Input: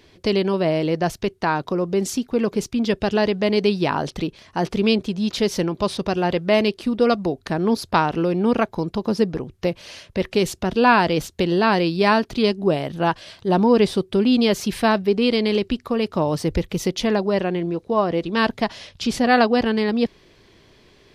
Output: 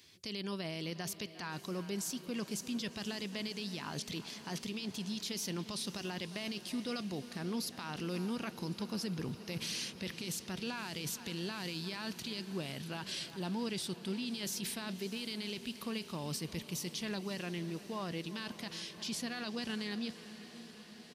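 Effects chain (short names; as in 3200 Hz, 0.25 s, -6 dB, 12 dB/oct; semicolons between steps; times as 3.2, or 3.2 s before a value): Doppler pass-by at 8.84, 7 m/s, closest 9.6 m; bell 550 Hz -13.5 dB 2.5 oct; reverse; compressor 6:1, threshold -43 dBFS, peak gain reduction 19.5 dB; reverse; HPF 130 Hz 12 dB/oct; high shelf 4700 Hz +11 dB; speakerphone echo 0.35 s, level -19 dB; limiter -39.5 dBFS, peak gain reduction 14 dB; on a send: diffused feedback echo 0.569 s, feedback 76%, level -15 dB; on the sum: gain +9.5 dB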